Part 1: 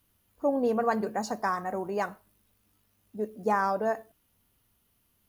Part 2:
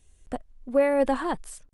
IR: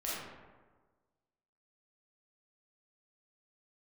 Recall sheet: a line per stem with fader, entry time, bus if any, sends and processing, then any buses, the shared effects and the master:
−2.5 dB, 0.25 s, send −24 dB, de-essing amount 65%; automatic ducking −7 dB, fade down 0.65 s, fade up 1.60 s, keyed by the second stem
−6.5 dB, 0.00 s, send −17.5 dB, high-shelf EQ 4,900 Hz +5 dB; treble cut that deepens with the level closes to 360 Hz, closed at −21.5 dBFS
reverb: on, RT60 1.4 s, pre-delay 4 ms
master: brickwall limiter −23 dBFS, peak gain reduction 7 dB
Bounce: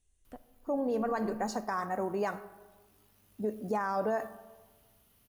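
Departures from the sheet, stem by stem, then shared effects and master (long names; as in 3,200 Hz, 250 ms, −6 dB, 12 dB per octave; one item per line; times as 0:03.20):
stem 1 −2.5 dB → +4.0 dB
stem 2 −6.5 dB → −16.5 dB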